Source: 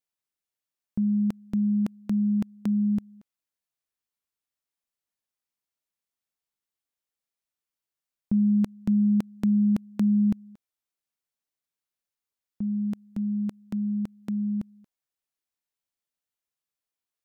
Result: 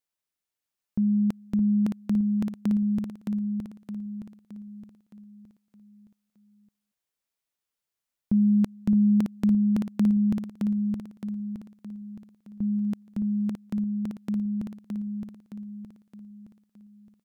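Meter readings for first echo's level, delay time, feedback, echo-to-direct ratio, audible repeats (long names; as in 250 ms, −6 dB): −4.5 dB, 617 ms, 46%, −3.5 dB, 5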